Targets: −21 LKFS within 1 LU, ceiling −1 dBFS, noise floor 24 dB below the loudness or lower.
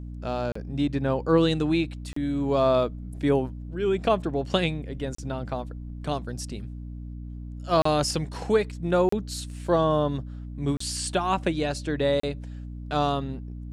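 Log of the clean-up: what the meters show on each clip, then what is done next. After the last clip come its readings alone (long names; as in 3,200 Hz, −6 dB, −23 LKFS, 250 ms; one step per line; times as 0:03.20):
number of dropouts 7; longest dropout 34 ms; mains hum 60 Hz; hum harmonics up to 300 Hz; level of the hum −34 dBFS; integrated loudness −26.5 LKFS; sample peak −8.5 dBFS; target loudness −21.0 LKFS
→ repair the gap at 0:00.52/0:02.13/0:05.15/0:07.82/0:09.09/0:10.77/0:12.20, 34 ms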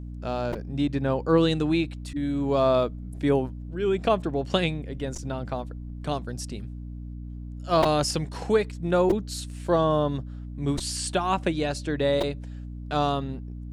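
number of dropouts 0; mains hum 60 Hz; hum harmonics up to 300 Hz; level of the hum −34 dBFS
→ hum removal 60 Hz, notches 5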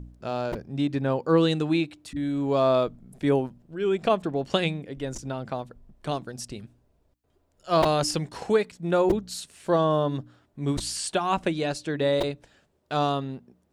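mains hum none found; integrated loudness −26.5 LKFS; sample peak −9.0 dBFS; target loudness −21.0 LKFS
→ level +5.5 dB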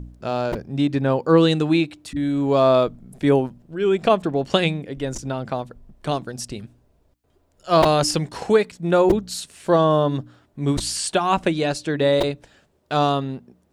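integrated loudness −21.0 LKFS; sample peak −3.5 dBFS; background noise floor −63 dBFS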